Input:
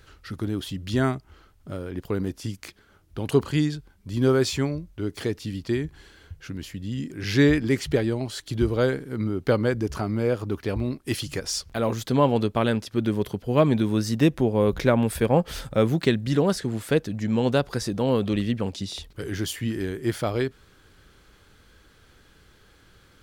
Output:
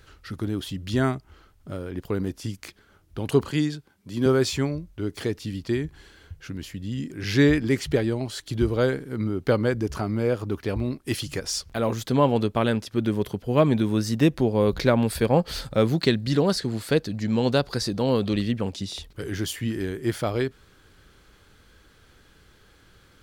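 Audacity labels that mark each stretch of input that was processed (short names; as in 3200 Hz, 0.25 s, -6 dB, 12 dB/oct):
3.500000	4.260000	HPF 150 Hz
14.370000	18.480000	bell 4400 Hz +10 dB 0.33 oct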